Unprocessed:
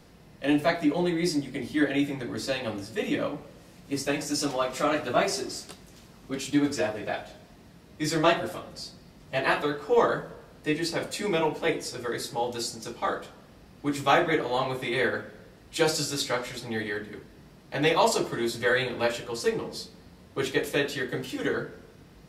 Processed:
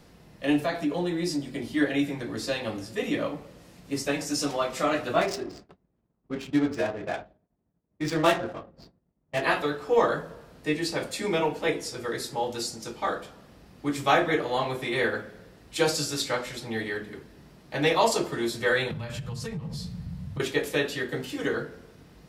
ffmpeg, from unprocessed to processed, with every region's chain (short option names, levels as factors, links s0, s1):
-filter_complex "[0:a]asettb=1/sr,asplit=3[s0][s1][s2];[s0]atrim=end=0.624[s3];[s1]atrim=start=0.62:end=1.73,asetpts=PTS-STARTPTS,afade=t=in:d=0.004:c=qsin,afade=t=out:st=1.106:d=0.004:c=qsin,bandreject=f=2100:w=11,acompressor=threshold=0.0562:ratio=2:attack=3.2:release=140:knee=1:detection=peak[s4];[s2]atrim=start=1.726[s5];[s3][s4]acrossfade=d=0.004:c1=hsin:c2=qsin[s6];[s6][s5]acrossfade=d=0.004:c1=qsin:c2=hsin,asettb=1/sr,asplit=3[s7][s8][s9];[s7]atrim=end=5.214[s10];[s8]atrim=start=5.21:end=9.42,asetpts=PTS-STARTPTS,afade=t=in:d=0.004:c=qsin,afade=t=out:st=4.206:d=0.004:c=qsin,agate=range=0.0224:threshold=0.0126:ratio=3:release=100:detection=peak,adynamicsmooth=sensitivity=6:basefreq=1100[s11];[s9]atrim=start=9.416[s12];[s10][s11]acrossfade=d=0.004:c1=hsin:c2=qsin[s13];[s13][s12]acrossfade=d=0.004:c1=qsin:c2=hsin,asettb=1/sr,asplit=3[s14][s15][s16];[s14]atrim=end=18.914[s17];[s15]atrim=start=18.91:end=20.4,asetpts=PTS-STARTPTS,afade=t=in:d=0.004:c=qsin,afade=t=out:st=1.486:d=0.004:c=qsin,lowshelf=f=220:t=q:w=3:g=14,acompressor=threshold=0.0316:ratio=16:attack=3.2:release=140:knee=1:detection=peak[s18];[s16]atrim=start=20.396[s19];[s17][s18]acrossfade=d=0.004:c1=hsin:c2=qsin[s20];[s20][s19]acrossfade=d=0.004:c1=qsin:c2=hsin"